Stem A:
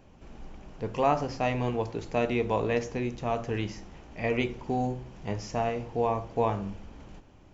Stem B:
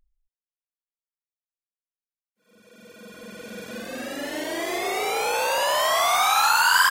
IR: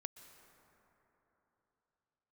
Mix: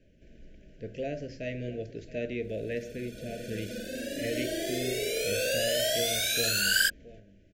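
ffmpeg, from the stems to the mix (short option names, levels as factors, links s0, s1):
-filter_complex "[0:a]bass=f=250:g=-1,treble=f=4000:g=-4,volume=0.501,asplit=2[s0][s1];[s1]volume=0.141[s2];[1:a]equalizer=f=2000:t=o:w=0.35:g=-11,volume=0.75[s3];[s2]aecho=0:1:672:1[s4];[s0][s3][s4]amix=inputs=3:normalize=0,asuperstop=centerf=1000:order=20:qfactor=1.2"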